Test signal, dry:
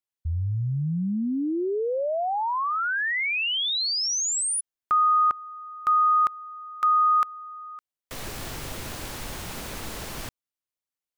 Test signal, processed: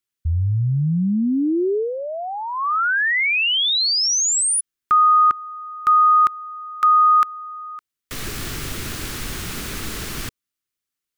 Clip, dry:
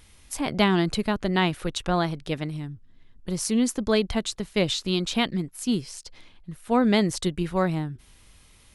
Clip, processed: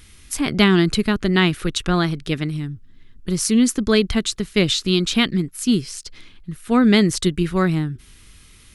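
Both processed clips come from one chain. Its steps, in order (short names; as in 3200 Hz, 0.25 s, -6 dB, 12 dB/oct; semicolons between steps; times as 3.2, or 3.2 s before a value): band shelf 710 Hz -8.5 dB 1.2 oct; gain +7 dB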